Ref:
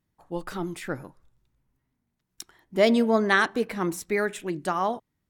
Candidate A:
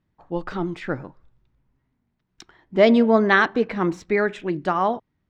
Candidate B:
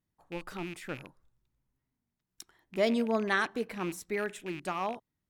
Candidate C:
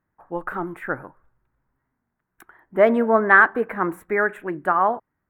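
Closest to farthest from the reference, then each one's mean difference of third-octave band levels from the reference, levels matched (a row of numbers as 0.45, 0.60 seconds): B, A, C; 2.5, 3.5, 7.0 decibels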